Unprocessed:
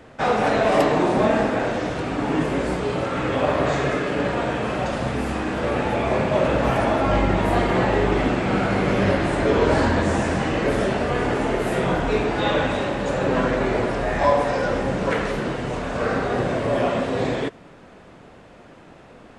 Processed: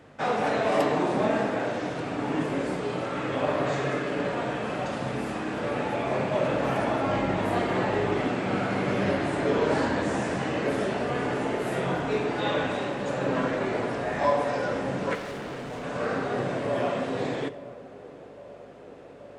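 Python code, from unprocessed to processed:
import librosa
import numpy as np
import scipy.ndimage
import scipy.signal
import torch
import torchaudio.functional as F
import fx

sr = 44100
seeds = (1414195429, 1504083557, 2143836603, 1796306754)

y = fx.add_hum(x, sr, base_hz=50, snr_db=26)
y = scipy.signal.sosfilt(scipy.signal.butter(2, 120.0, 'highpass', fs=sr, output='sos'), y)
y = fx.room_shoebox(y, sr, seeds[0], volume_m3=760.0, walls='mixed', distance_m=0.35)
y = fx.overload_stage(y, sr, gain_db=28.0, at=(15.15, 15.84))
y = fx.echo_banded(y, sr, ms=833, feedback_pct=82, hz=480.0, wet_db=-18.5)
y = F.gain(torch.from_numpy(y), -6.0).numpy()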